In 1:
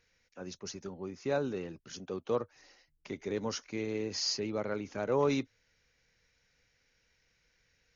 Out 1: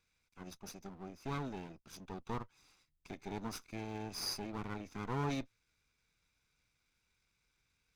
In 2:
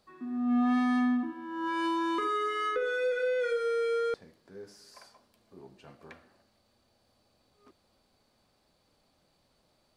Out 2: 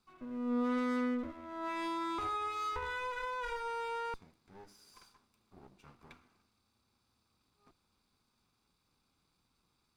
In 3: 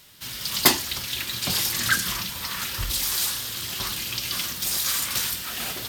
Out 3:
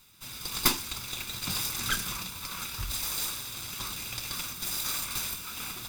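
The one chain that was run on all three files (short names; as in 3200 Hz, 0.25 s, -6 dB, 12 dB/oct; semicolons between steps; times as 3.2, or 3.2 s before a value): minimum comb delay 0.81 ms; gain -5.5 dB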